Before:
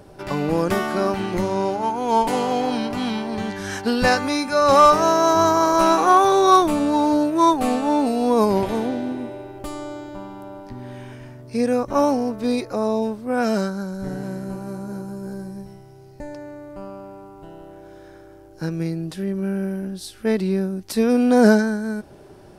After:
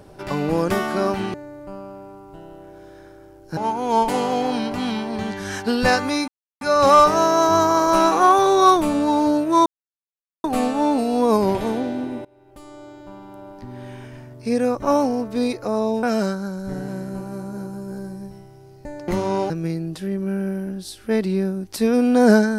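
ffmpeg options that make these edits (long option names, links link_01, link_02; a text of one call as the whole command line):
ffmpeg -i in.wav -filter_complex "[0:a]asplit=9[link_01][link_02][link_03][link_04][link_05][link_06][link_07][link_08][link_09];[link_01]atrim=end=1.342[link_10];[link_02]atrim=start=16.428:end=18.662[link_11];[link_03]atrim=start=1.758:end=4.47,asetpts=PTS-STARTPTS,afade=type=out:start_time=2.708:duration=0.004:curve=hsin,apad=pad_dur=0.33[link_12];[link_04]atrim=start=4.47:end=7.52,asetpts=PTS-STARTPTS,afade=type=in:duration=0.004:curve=hsin,afade=type=out:start_time=3.046:duration=0.004:curve=hsin,apad=pad_dur=0.78[link_13];[link_05]atrim=start=7.52:end=9.33,asetpts=PTS-STARTPTS,afade=type=in:duration=0.004:curve=hsin,afade=type=out:start_time=1.806:duration=0.004:curve=hsin:silence=0.0668344[link_14];[link_06]atrim=start=9.33:end=13.112,asetpts=PTS-STARTPTS,afade=type=in:duration=1.64:silence=0.0668344[link_15];[link_07]atrim=start=13.378:end=16.432[link_16];[link_08]atrim=start=1.338:end=1.762[link_17];[link_09]atrim=start=18.658[link_18];[link_10][link_11]acrossfade=duration=0.004:curve1=hsin:curve2=hsin[link_19];[link_12][link_13][link_14][link_15]concat=n=4:v=0:a=1[link_20];[link_19][link_20]acrossfade=duration=0.004:curve1=hsin:curve2=hsin[link_21];[link_21][link_16]acrossfade=duration=0.004:curve1=hsin:curve2=hsin[link_22];[link_22][link_17]acrossfade=duration=0.004:curve1=hsin:curve2=hsin[link_23];[link_23][link_18]acrossfade=duration=0.004:curve1=hsin:curve2=hsin" out.wav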